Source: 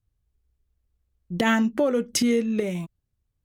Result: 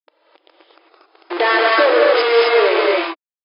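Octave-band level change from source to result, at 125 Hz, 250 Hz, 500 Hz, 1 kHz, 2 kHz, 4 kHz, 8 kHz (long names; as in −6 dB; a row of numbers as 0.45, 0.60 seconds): below −35 dB, −3.5 dB, +13.5 dB, +15.5 dB, +14.0 dB, +12.0 dB, below −40 dB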